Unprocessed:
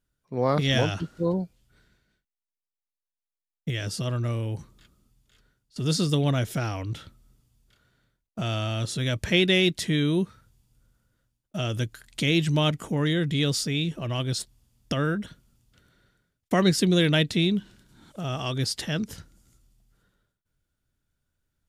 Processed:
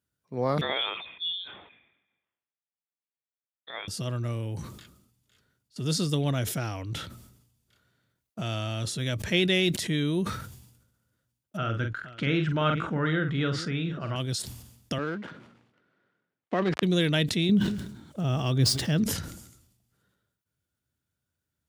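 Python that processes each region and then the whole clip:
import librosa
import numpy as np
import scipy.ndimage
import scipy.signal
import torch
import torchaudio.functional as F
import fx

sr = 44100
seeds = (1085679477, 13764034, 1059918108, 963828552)

y = fx.chain(x, sr, fx.highpass(hz=390.0, slope=24),
    fx.peak_eq(hz=910.0, db=-8.5, octaves=0.45),
    fx.freq_invert(carrier_hz=3900), at=(0.61, 3.88))
y = fx.chain(y, sr, fx.lowpass(hz=2500.0, slope=12),
    fx.peak_eq(hz=1400.0, db=14.5, octaves=0.41),
    fx.echo_multitap(ms=(44, 473), db=(-7.5, -20.0)), at=(11.57, 14.16))
y = fx.chain(y, sr, fx.dead_time(dead_ms=0.13),
    fx.bandpass_edges(low_hz=240.0, high_hz=2300.0), at=(14.98, 16.83))
y = fx.chain(y, sr, fx.median_filter(points=3),
    fx.low_shelf(hz=430.0, db=9.0),
    fx.echo_feedback(ms=186, feedback_pct=23, wet_db=-23), at=(17.49, 19.04))
y = scipy.signal.sosfilt(scipy.signal.butter(4, 67.0, 'highpass', fs=sr, output='sos'), y)
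y = fx.high_shelf(y, sr, hz=11000.0, db=4.5)
y = fx.sustainer(y, sr, db_per_s=64.0)
y = y * 10.0 ** (-3.5 / 20.0)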